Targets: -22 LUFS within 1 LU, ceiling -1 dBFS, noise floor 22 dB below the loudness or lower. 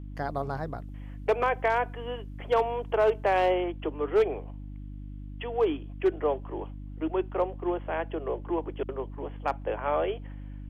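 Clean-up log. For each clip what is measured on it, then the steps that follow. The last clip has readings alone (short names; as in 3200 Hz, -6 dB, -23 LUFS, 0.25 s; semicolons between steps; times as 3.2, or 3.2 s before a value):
clipped 0.4%; flat tops at -17.0 dBFS; hum 50 Hz; harmonics up to 300 Hz; hum level -38 dBFS; loudness -29.5 LUFS; peak -17.0 dBFS; loudness target -22.0 LUFS
-> clip repair -17 dBFS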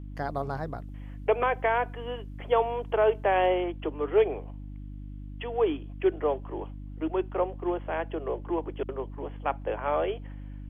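clipped 0.0%; hum 50 Hz; harmonics up to 300 Hz; hum level -37 dBFS
-> de-hum 50 Hz, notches 6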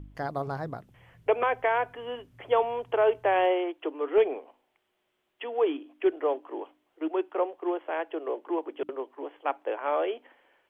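hum none; loudness -29.0 LUFS; peak -11.0 dBFS; loudness target -22.0 LUFS
-> gain +7 dB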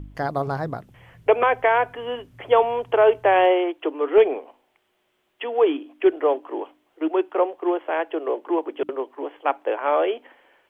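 loudness -22.0 LUFS; peak -4.0 dBFS; noise floor -69 dBFS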